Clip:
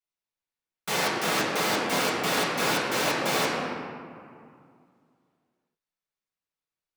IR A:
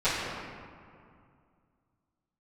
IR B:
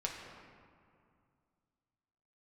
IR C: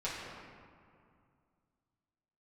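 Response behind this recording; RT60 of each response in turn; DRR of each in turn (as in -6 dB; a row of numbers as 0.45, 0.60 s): C; 2.3, 2.3, 2.3 s; -18.5, -1.5, -9.5 dB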